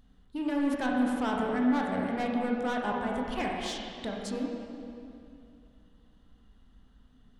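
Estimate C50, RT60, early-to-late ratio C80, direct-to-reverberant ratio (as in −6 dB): 0.0 dB, 2.6 s, 1.5 dB, −1.5 dB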